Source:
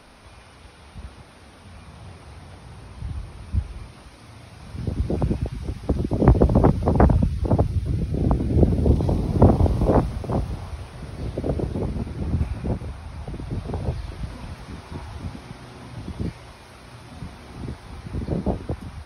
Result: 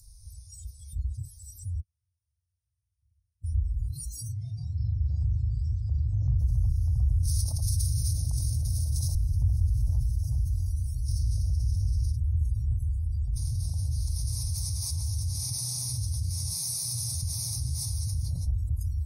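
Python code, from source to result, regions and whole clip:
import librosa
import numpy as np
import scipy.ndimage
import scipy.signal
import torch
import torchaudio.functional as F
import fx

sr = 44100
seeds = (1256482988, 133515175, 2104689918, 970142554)

y = fx.chain(x, sr, fx.highpass(hz=77.0, slope=12),
    fx.gate_flip(shuts_db=-43.0, range_db=-39), at=(1.8, 3.44))
y = fx.chain(y, sr, fx.highpass(hz=77.0, slope=12),
    fx.air_absorb(metres=84.0),
    fx.doubler(ms=39.0, db=-2.5), at=(4.32, 6.39))
y = fx.chain(y, sr, fx.highpass(hz=740.0, slope=6),
    fx.env_flatten(amount_pct=100), at=(7.23, 9.15))
y = fx.chain(y, sr, fx.peak_eq(hz=5500.0, db=6.5, octaves=0.48),
    fx.env_flatten(amount_pct=50), at=(11.08, 12.12))
y = fx.chain(y, sr, fx.highpass(hz=230.0, slope=6),
    fx.echo_filtered(ms=79, feedback_pct=71, hz=2700.0, wet_db=-12.0),
    fx.env_flatten(amount_pct=50), at=(13.36, 18.45))
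y = scipy.signal.sosfilt(scipy.signal.cheby2(4, 40, [190.0, 3200.0], 'bandstop', fs=sr, output='sos'), y)
y = fx.noise_reduce_blind(y, sr, reduce_db=28)
y = fx.env_flatten(y, sr, amount_pct=70)
y = y * librosa.db_to_amplitude(-7.5)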